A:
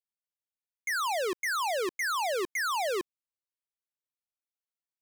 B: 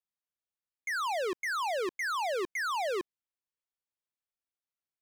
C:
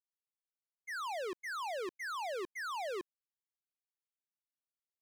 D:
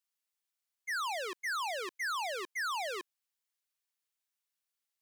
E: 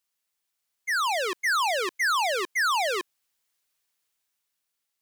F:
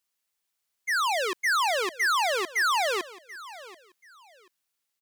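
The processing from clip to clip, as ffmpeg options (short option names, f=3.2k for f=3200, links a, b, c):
-af "highshelf=f=6k:g=-9.5,volume=-1.5dB"
-af "agate=range=-33dB:threshold=-26dB:ratio=3:detection=peak,volume=3dB"
-af "highpass=f=1.4k:p=1,volume=8dB"
-af "dynaudnorm=f=210:g=9:m=4dB,volume=7dB"
-af "aecho=1:1:734|1468:0.126|0.0327"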